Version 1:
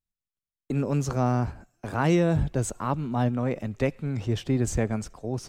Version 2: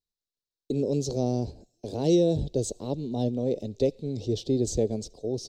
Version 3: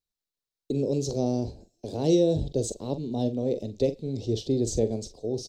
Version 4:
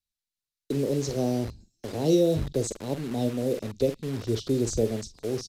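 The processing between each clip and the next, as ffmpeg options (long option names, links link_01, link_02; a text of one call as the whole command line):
ffmpeg -i in.wav -af "firequalizer=gain_entry='entry(160,0);entry(440,11);entry(1300,-27);entry(3900,13);entry(10000,-3)':delay=0.05:min_phase=1,volume=-5dB" out.wav
ffmpeg -i in.wav -filter_complex "[0:a]asplit=2[link_01][link_02];[link_02]adelay=44,volume=-11dB[link_03];[link_01][link_03]amix=inputs=2:normalize=0" out.wav
ffmpeg -i in.wav -filter_complex "[0:a]acrossover=split=260|1200|2900[link_01][link_02][link_03][link_04];[link_02]acrusher=bits=6:mix=0:aa=0.000001[link_05];[link_01][link_05][link_03][link_04]amix=inputs=4:normalize=0,aresample=32000,aresample=44100" out.wav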